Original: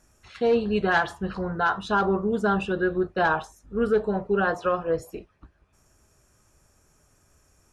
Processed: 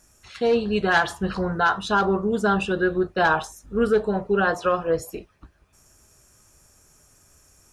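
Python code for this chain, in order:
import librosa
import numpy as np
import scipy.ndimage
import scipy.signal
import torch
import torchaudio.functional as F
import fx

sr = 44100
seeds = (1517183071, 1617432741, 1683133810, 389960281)

p1 = fx.rider(x, sr, range_db=10, speed_s=0.5)
p2 = x + F.gain(torch.from_numpy(p1), 2.0).numpy()
p3 = fx.high_shelf(p2, sr, hz=3700.0, db=8.5)
y = F.gain(torch.from_numpy(p3), -5.0).numpy()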